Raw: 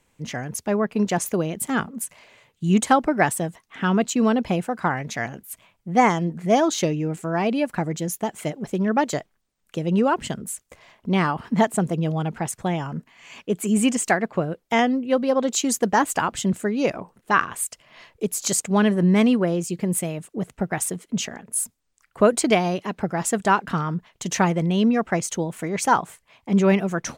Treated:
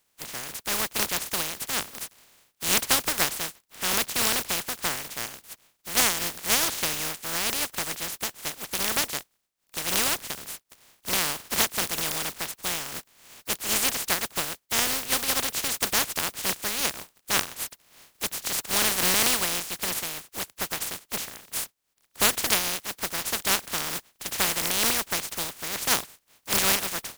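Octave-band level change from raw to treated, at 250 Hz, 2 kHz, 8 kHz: -17.5 dB, -1.5 dB, +3.0 dB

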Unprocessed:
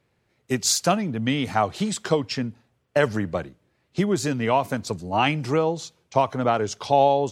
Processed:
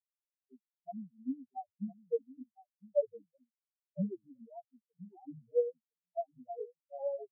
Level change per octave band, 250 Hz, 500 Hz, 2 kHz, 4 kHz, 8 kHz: -17.5 dB, -13.5 dB, under -40 dB, under -40 dB, under -40 dB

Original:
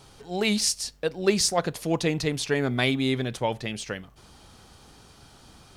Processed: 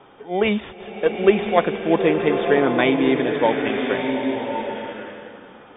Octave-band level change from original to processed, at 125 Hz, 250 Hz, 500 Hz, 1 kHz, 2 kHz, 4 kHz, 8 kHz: -1.5 dB, +7.0 dB, +9.5 dB, +10.0 dB, +6.0 dB, -2.5 dB, under -40 dB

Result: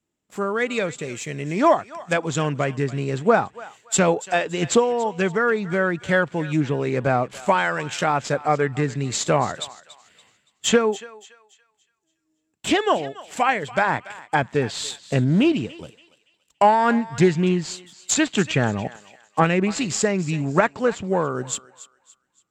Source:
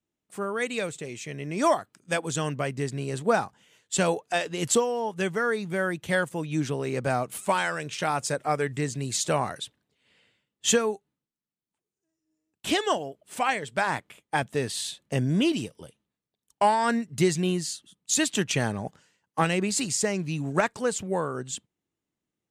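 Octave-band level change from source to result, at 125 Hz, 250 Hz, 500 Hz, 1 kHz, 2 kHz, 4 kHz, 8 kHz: +6.0 dB, +6.0 dB, +6.0 dB, +6.0 dB, +5.5 dB, +2.5 dB, +1.0 dB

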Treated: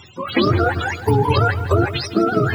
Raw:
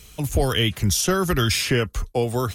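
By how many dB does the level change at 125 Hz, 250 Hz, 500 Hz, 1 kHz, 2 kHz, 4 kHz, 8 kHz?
+4.0 dB, +5.0 dB, +4.5 dB, +8.5 dB, +4.0 dB, -3.5 dB, -15.5 dB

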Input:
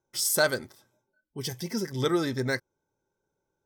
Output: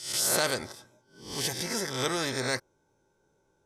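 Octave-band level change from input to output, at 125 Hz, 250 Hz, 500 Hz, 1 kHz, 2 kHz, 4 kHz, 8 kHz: -5.0 dB, -5.5 dB, -3.5 dB, +1.5 dB, -2.0 dB, +3.0 dB, +2.0 dB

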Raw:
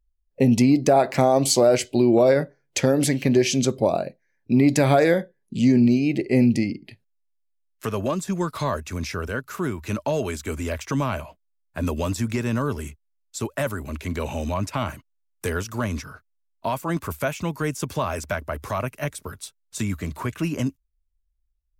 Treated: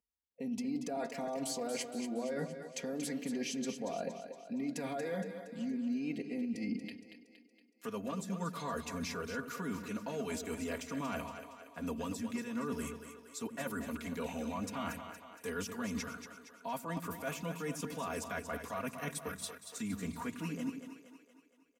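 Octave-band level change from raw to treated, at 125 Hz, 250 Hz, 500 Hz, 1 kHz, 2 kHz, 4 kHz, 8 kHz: -20.5 dB, -15.5 dB, -18.0 dB, -14.5 dB, -12.5 dB, -14.0 dB, -13.5 dB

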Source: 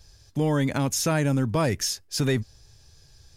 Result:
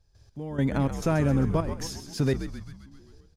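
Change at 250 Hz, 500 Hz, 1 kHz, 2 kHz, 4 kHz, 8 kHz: -1.0 dB, -2.5 dB, -3.5 dB, -6.0 dB, -10.0 dB, -12.5 dB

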